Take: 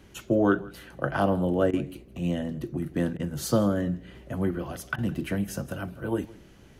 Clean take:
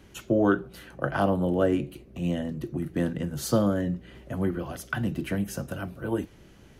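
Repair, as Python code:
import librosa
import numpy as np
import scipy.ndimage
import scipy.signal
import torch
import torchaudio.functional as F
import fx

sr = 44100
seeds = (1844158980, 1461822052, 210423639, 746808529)

y = fx.fix_interpolate(x, sr, at_s=(1.71, 3.17, 4.96), length_ms=22.0)
y = fx.fix_echo_inverse(y, sr, delay_ms=163, level_db=-21.5)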